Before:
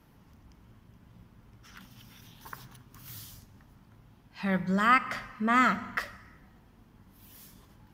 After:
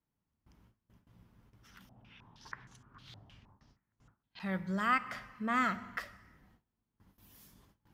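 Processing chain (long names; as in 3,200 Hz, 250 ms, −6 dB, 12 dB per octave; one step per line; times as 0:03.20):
noise gate with hold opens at −46 dBFS
0:01.89–0:04.40: low-pass on a step sequencer 6.4 Hz 720–7,300 Hz
level −7.5 dB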